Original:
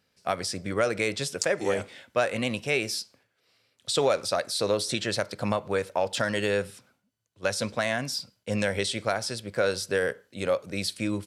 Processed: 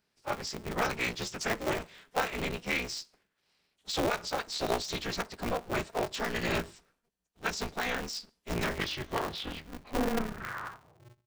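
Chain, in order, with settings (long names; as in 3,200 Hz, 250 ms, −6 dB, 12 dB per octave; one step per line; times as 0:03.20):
turntable brake at the end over 2.72 s
phase-vocoder pitch shift with formants kept −10 semitones
ring modulator with a square carrier 120 Hz
level −4.5 dB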